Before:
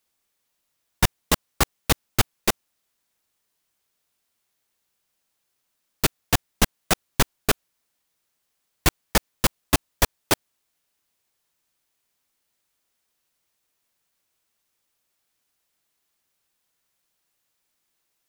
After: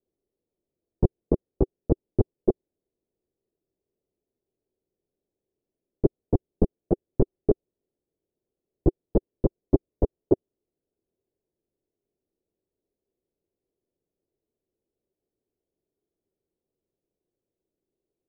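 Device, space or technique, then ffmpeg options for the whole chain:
under water: -af "lowpass=frequency=550:width=0.5412,lowpass=frequency=550:width=1.3066,equalizer=frequency=380:width_type=o:width=0.59:gain=10"

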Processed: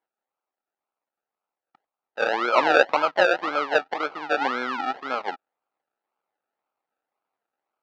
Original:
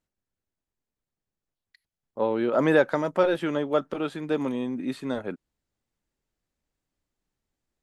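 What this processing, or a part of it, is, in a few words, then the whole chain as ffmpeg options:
circuit-bent sampling toy: -filter_complex "[0:a]asettb=1/sr,asplit=3[link_01][link_02][link_03];[link_01]atrim=end=4.414[link_04];[link_02]atrim=start=4.41:end=4.85,asetpts=PTS-STARTPTS,afade=type=in:duration=0.004:curve=qsin,afade=type=out:start_time=0.436:duration=0.004:curve=qsin,tiltshelf=frequency=970:gain=4.5[link_05];[link_03]atrim=start=4.846[link_06];[link_04][link_05]acrossfade=duration=0.004:curve1=hsin:curve2=qsin[link_07];[link_07][link_06]acrossfade=duration=0.004:curve1=qsin:curve2=hsin,acrusher=samples=33:mix=1:aa=0.000001:lfo=1:lforange=19.8:lforate=1.9,highpass=580,equalizer=frequency=800:width_type=q:width=4:gain=7,equalizer=frequency=1300:width_type=q:width=4:gain=8,equalizer=frequency=3300:width_type=q:width=4:gain=-4,lowpass=frequency=4000:width=0.5412,lowpass=frequency=4000:width=1.3066,volume=4dB"

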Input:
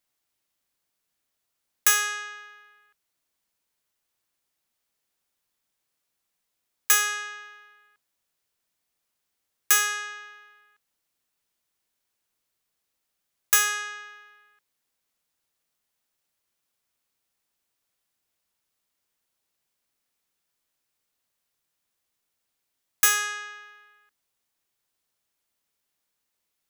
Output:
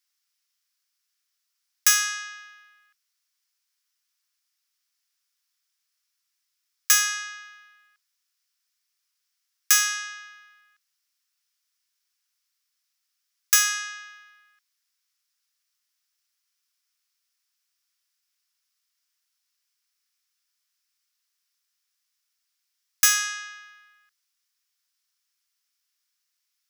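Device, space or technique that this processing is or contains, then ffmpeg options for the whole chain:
headphones lying on a table: -af "highpass=frequency=1200:width=0.5412,highpass=frequency=1200:width=1.3066,equalizer=frequency=5300:width_type=o:width=0.5:gain=8.5"

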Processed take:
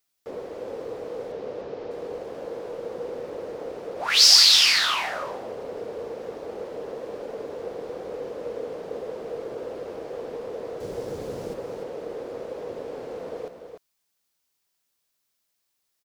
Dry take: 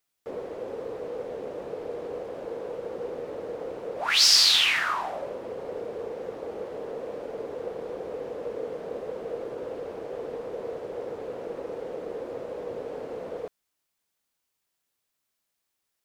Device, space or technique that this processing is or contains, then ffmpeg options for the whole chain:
presence and air boost: -filter_complex "[0:a]equalizer=frequency=5000:width_type=o:width=1:gain=4,highshelf=frequency=11000:gain=5,asettb=1/sr,asplit=3[link_01][link_02][link_03];[link_01]atrim=end=1.324[link_04];[link_02]atrim=start=1.32:end=1.91,asetpts=PTS-STARTPTS,afade=type=in:duration=0.004:curve=qsin,afade=type=out:start_time=0.586:duration=0.004:curve=qsin,lowpass=frequency=5900:width=0.5412,lowpass=frequency=5900:width=1.3066[link_05];[link_03]atrim=start=1.906[link_06];[link_04][link_05]acrossfade=duration=0.004:curve1=hsin:curve2=qsin[link_07];[link_07][link_06]acrossfade=duration=0.004:curve1=qsin:curve2=hsin,asettb=1/sr,asplit=3[link_08][link_09][link_10];[link_08]atrim=end=10.804[link_11];[link_09]atrim=start=10.8:end=11.54,asetpts=PTS-STARTPTS,afade=type=in:duration=0.004:curve=qsin,afade=type=out:start_time=0.736:duration=0.004:curve=qsin,bass=frequency=250:gain=12,treble=frequency=4000:gain=11[link_12];[link_10]atrim=start=11.536[link_13];[link_11][link_12]acrossfade=duration=0.004:curve1=hsin:curve2=qsin[link_14];[link_14][link_13]acrossfade=duration=0.004:curve1=qsin:curve2=hsin,aecho=1:1:297:0.422"

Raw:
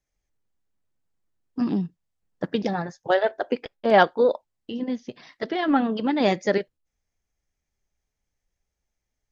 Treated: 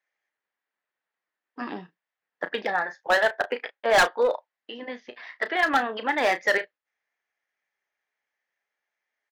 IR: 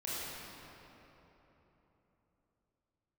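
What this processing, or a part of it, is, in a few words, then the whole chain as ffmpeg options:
megaphone: -filter_complex "[0:a]highpass=680,lowpass=3000,equalizer=frequency=1800:width_type=o:width=0.55:gain=8,asoftclip=type=hard:threshold=-19dB,asplit=2[link_01][link_02];[link_02]adelay=33,volume=-11.5dB[link_03];[link_01][link_03]amix=inputs=2:normalize=0,volume=4dB"

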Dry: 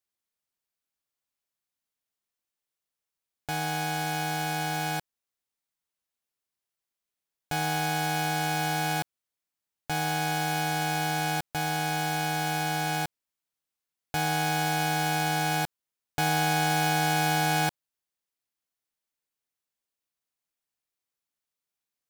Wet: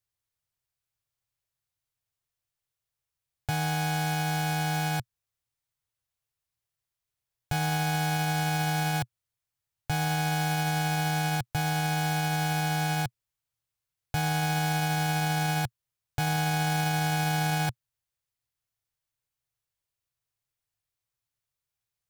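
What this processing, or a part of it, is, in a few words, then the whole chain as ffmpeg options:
car stereo with a boomy subwoofer: -af "lowshelf=frequency=160:width_type=q:width=3:gain=9.5,alimiter=limit=-18.5dB:level=0:latency=1"

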